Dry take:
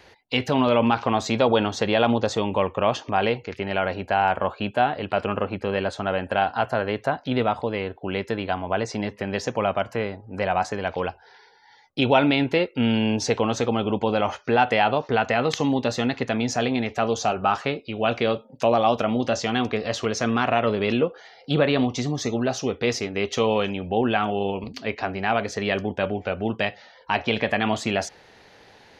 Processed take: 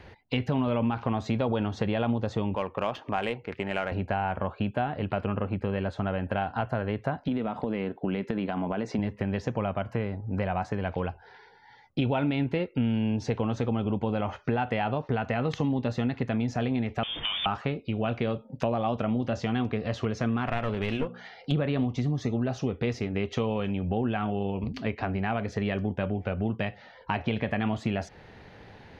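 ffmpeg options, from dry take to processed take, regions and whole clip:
-filter_complex "[0:a]asettb=1/sr,asplit=3[s0][s1][s2];[s0]atrim=end=2.554[s3];[s1]atrim=start=2.55:end=3.92,asetpts=PTS-STARTPTS,afade=t=in:d=0.004:c=qsin,afade=t=out:st=1.366:d=0.004:c=qsin,aemphasis=mode=production:type=riaa,adynamicsmooth=sensitivity=1:basefreq=1800[s4];[s2]atrim=start=3.916[s5];[s3][s4]acrossfade=d=0.004:c1=hsin:c2=qsin[s6];[s6][s5]acrossfade=d=0.004:c1=qsin:c2=hsin,asettb=1/sr,asplit=3[s7][s8][s9];[s7]atrim=end=7.284[s10];[s8]atrim=start=7.28:end=8.99,asetpts=PTS-STARTPTS,afade=t=in:d=0.004:c=qsin,afade=t=out:st=1.706:d=0.004:c=qsin,lowshelf=f=130:t=q:w=1.5:g=-13.5,acompressor=threshold=0.0708:ratio=6:attack=3.2:release=140:knee=1:detection=peak[s11];[s9]atrim=start=8.986[s12];[s10][s11]acrossfade=d=0.004:c1=hsin:c2=qsin[s13];[s13][s12]acrossfade=d=0.004:c1=qsin:c2=hsin,asettb=1/sr,asplit=3[s14][s15][s16];[s14]atrim=end=17.034[s17];[s15]atrim=start=17.03:end=17.46,asetpts=PTS-STARTPTS,afade=t=in:d=0.004:c=qsin,afade=t=out:st=0.426:d=0.004:c=qsin,aeval=exprs='val(0)+0.5*0.0562*sgn(val(0))':c=same,acompressor=threshold=0.0891:ratio=4:attack=3.2:release=140:knee=1:detection=peak,lowpass=f=3100:t=q:w=0.5098,lowpass=f=3100:t=q:w=0.6013,lowpass=f=3100:t=q:w=0.9,lowpass=f=3100:t=q:w=2.563,afreqshift=-3700[s18];[s16]atrim=start=17.456[s19];[s17][s18]acrossfade=d=0.004:c1=hsin:c2=qsin[s20];[s20][s19]acrossfade=d=0.004:c1=qsin:c2=hsin,asettb=1/sr,asplit=3[s21][s22][s23];[s21]atrim=end=20.474[s24];[s22]atrim=start=20.47:end=21.52,asetpts=PTS-STARTPTS,afade=t=in:d=0.004:c=qsin,afade=t=out:st=1.046:d=0.004:c=qsin,tiltshelf=f=680:g=-4.5,bandreject=f=60:t=h:w=6,bandreject=f=120:t=h:w=6,bandreject=f=180:t=h:w=6,bandreject=f=240:t=h:w=6,aeval=exprs='clip(val(0),-1,0.0631)':c=same[s25];[s23]atrim=start=21.516[s26];[s24][s25]acrossfade=d=0.004:c1=hsin:c2=qsin[s27];[s27][s26]acrossfade=d=0.004:c1=qsin:c2=hsin,bass=f=250:g=11,treble=f=4000:g=-12,acompressor=threshold=0.0447:ratio=3"

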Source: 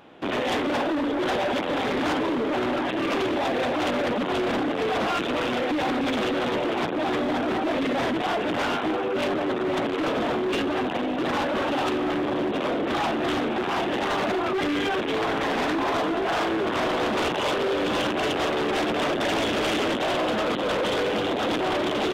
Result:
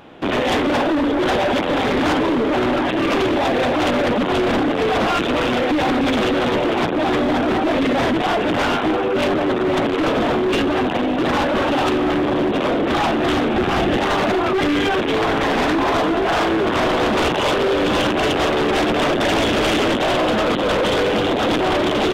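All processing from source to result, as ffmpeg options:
-filter_complex "[0:a]asettb=1/sr,asplit=3[s0][s1][s2];[s0]atrim=end=13.544[s3];[s1]atrim=start=13.54:end=13.98,asetpts=PTS-STARTPTS,afade=t=in:d=0.004:c=qsin,afade=t=out:st=0.436:d=0.004:c=qsin,lowshelf=f=150:g=9.5,bandreject=f=960:w=8.3[s4];[s2]atrim=start=13.976[s5];[s3][s4]acrossfade=d=0.004:c1=hsin:c2=qsin[s6];[s6][s5]acrossfade=d=0.004:c1=qsin:c2=hsin,lowshelf=f=99:g=9,acontrast=65"

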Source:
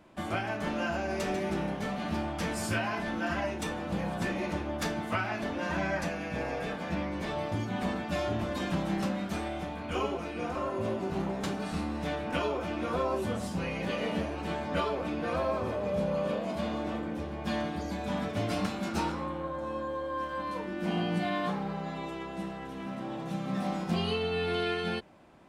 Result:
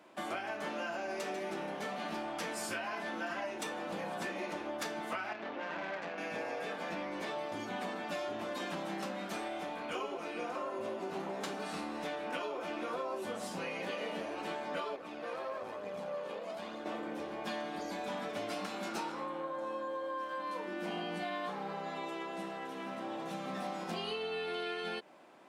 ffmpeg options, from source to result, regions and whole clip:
-filter_complex "[0:a]asettb=1/sr,asplit=3[s0][s1][s2];[s0]atrim=end=5.334[s3];[s1]atrim=start=5.33:end=6.18,asetpts=PTS-STARTPTS,afade=t=in:d=0.004:c=qsin,afade=t=out:st=0.846:d=0.004:c=qsin,lowpass=3100,aeval=exprs='(tanh(31.6*val(0)+0.8)-tanh(0.8))/31.6':c=same[s4];[s2]atrim=start=6.176[s5];[s3][s4]acrossfade=d=0.004:c1=hsin:c2=qsin[s6];[s6][s5]acrossfade=d=0.004:c1=qsin:c2=hsin,asettb=1/sr,asplit=3[s7][s8][s9];[s7]atrim=end=14.964[s10];[s8]atrim=start=14.96:end=16.86,asetpts=PTS-STARTPTS,afade=t=in:d=0.004:c=qsin,afade=t=out:st=1.896:d=0.004:c=qsin,flanger=delay=0.4:depth=2.1:regen=44:speed=1.1:shape=triangular,aeval=exprs='(tanh(25.1*val(0)+0.65)-tanh(0.65))/25.1':c=same[s11];[s9]atrim=start=16.856[s12];[s10][s11]acrossfade=d=0.004:c1=hsin:c2=qsin[s13];[s13][s12]acrossfade=d=0.004:c1=qsin:c2=hsin,highpass=340,acompressor=threshold=0.0141:ratio=4,volume=1.12"

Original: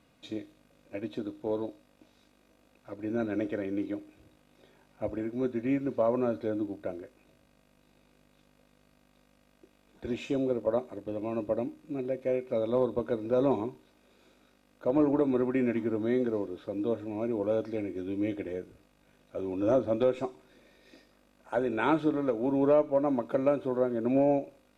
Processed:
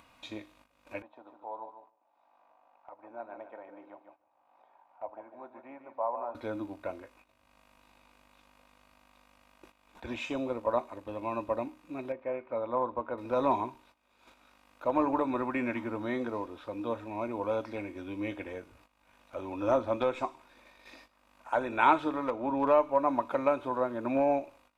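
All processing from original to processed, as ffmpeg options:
-filter_complex "[0:a]asettb=1/sr,asplit=3[s0][s1][s2];[s0]atrim=end=1.024[s3];[s1]atrim=start=1.02:end=6.35,asetpts=PTS-STARTPTS,afade=t=in:d=0.004:c=qsin,afade=t=out:st=5.326:d=0.004:c=qsin,bandpass=f=780:t=q:w=3.6,aecho=1:1:147|294|441:0.355|0.0887|0.0222,atrim=end_sample=235053[s4];[s2]atrim=start=6.346[s5];[s3][s4]acrossfade=d=0.004:c1=hsin:c2=qsin[s6];[s6][s5]acrossfade=d=0.004:c1=qsin:c2=hsin,asettb=1/sr,asplit=3[s7][s8][s9];[s7]atrim=end=12.124[s10];[s8]atrim=start=12.12:end=13.18,asetpts=PTS-STARTPTS,afade=t=in:d=0.004:c=qsin,afade=t=out:st=1.056:d=0.004:c=qsin,lowpass=1600,lowshelf=f=340:g=-6[s11];[s9]atrim=start=13.176[s12];[s10][s11]acrossfade=d=0.004:c1=hsin:c2=qsin[s13];[s13][s12]acrossfade=d=0.004:c1=qsin:c2=hsin,asettb=1/sr,asplit=3[s14][s15][s16];[s14]atrim=end=22.284[s17];[s15]atrim=start=22.28:end=22.68,asetpts=PTS-STARTPTS,afade=t=in:d=0.004:c=qsin,afade=t=out:st=0.396:d=0.004:c=qsin,lowpass=f=3100:p=1,asoftclip=type=hard:threshold=0.112[s18];[s16]atrim=start=22.676[s19];[s17][s18]acrossfade=d=0.004:c1=hsin:c2=qsin[s20];[s20][s19]acrossfade=d=0.004:c1=qsin:c2=hsin,agate=range=0.178:threshold=0.00112:ratio=16:detection=peak,equalizer=f=160:t=o:w=0.67:g=-12,equalizer=f=400:t=o:w=0.67:g=-9,equalizer=f=1000:t=o:w=0.67:g=11,equalizer=f=2500:t=o:w=0.67:g=5,acompressor=mode=upward:threshold=0.00501:ratio=2.5"

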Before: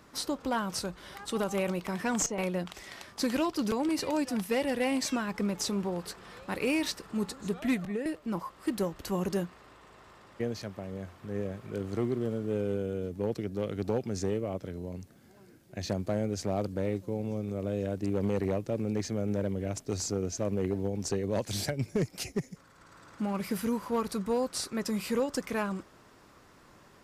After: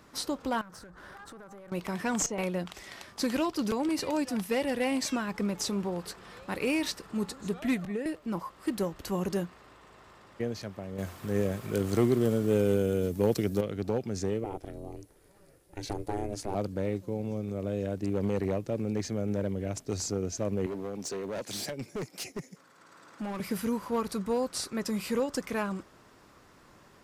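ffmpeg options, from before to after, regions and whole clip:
-filter_complex "[0:a]asettb=1/sr,asplit=3[s0][s1][s2];[s0]atrim=end=0.614[s3];[s1]atrim=start=0.61:end=1.72,asetpts=PTS-STARTPTS,afade=t=in:d=0.004:c=qsin,afade=t=out:st=1.106:d=0.004:c=qsin,highshelf=f=2000:t=q:w=3:g=-7,acompressor=threshold=0.00794:ratio=16:attack=3.2:release=140:knee=1:detection=peak,aeval=exprs='clip(val(0),-1,0.00501)':c=same[s4];[s2]atrim=start=1.716[s5];[s3][s4]acrossfade=d=0.004:c1=hsin:c2=qsin[s6];[s6][s5]acrossfade=d=0.004:c1=qsin:c2=hsin,asettb=1/sr,asplit=3[s7][s8][s9];[s7]atrim=end=10.984[s10];[s8]atrim=start=10.98:end=13.61,asetpts=PTS-STARTPTS,afade=t=in:d=0.004:c=qsin,afade=t=out:st=2.626:d=0.004:c=qsin,aemphasis=mode=production:type=50kf,acontrast=46[s11];[s9]atrim=start=13.606[s12];[s10][s11]acrossfade=d=0.004:c1=hsin:c2=qsin[s13];[s13][s12]acrossfade=d=0.004:c1=qsin:c2=hsin,asettb=1/sr,asplit=3[s14][s15][s16];[s14]atrim=end=14.444[s17];[s15]atrim=start=14.44:end=16.55,asetpts=PTS-STARTPTS,afade=t=in:d=0.004:c=qsin,afade=t=out:st=2.106:d=0.004:c=qsin,equalizer=f=10000:w=2.8:g=10.5,aeval=exprs='val(0)*sin(2*PI*200*n/s)':c=same[s18];[s16]atrim=start=16.546[s19];[s17][s18]acrossfade=d=0.004:c1=hsin:c2=qsin[s20];[s20][s19]acrossfade=d=0.004:c1=qsin:c2=hsin,asettb=1/sr,asplit=3[s21][s22][s23];[s21]atrim=end=20.664[s24];[s22]atrim=start=20.66:end=23.4,asetpts=PTS-STARTPTS,afade=t=in:d=0.004:c=qsin,afade=t=out:st=2.736:d=0.004:c=qsin,highpass=210,asoftclip=type=hard:threshold=0.0266[s25];[s23]atrim=start=23.396[s26];[s24][s25]acrossfade=d=0.004:c1=hsin:c2=qsin[s27];[s27][s26]acrossfade=d=0.004:c1=qsin:c2=hsin"

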